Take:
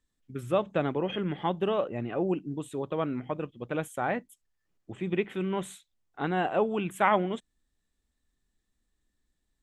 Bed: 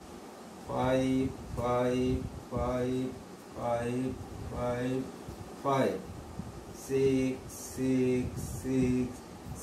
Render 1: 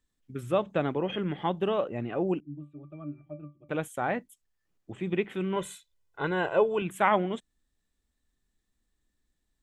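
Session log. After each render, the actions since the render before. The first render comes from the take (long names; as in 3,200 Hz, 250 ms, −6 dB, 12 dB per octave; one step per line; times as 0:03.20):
0:02.40–0:03.69: resonances in every octave D, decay 0.21 s
0:05.56–0:06.82: comb filter 2 ms, depth 71%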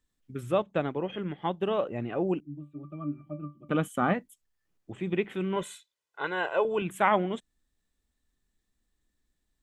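0:00.62–0:01.71: expander for the loud parts, over −44 dBFS
0:02.74–0:04.12: hollow resonant body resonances 220/1,200/3,000 Hz, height 11 dB → 16 dB, ringing for 40 ms
0:05.63–0:06.65: meter weighting curve A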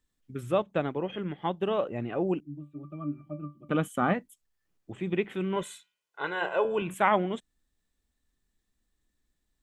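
0:05.69–0:06.94: hum removal 91.26 Hz, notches 36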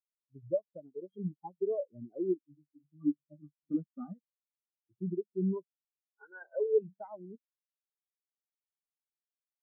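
downward compressor 5 to 1, threshold −30 dBFS, peak gain reduction 11 dB
every bin expanded away from the loudest bin 4 to 1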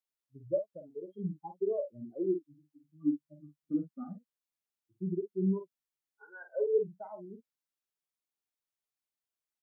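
double-tracking delay 47 ms −7.5 dB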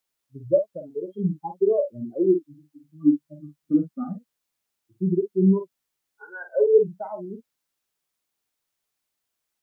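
level +11.5 dB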